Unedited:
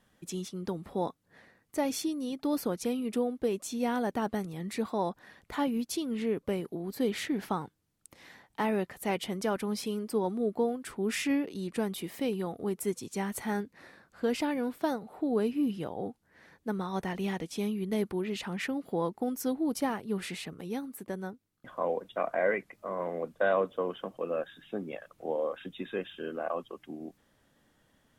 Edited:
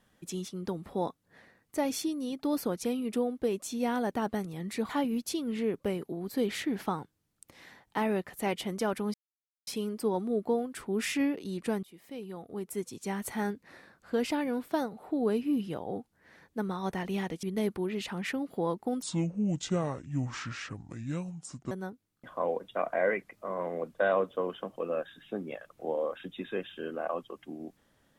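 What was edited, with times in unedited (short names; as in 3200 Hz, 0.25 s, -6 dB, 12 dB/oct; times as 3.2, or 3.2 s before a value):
4.89–5.52 cut
9.77 insert silence 0.53 s
11.93–13.42 fade in, from -20 dB
17.53–17.78 cut
19.37–21.12 speed 65%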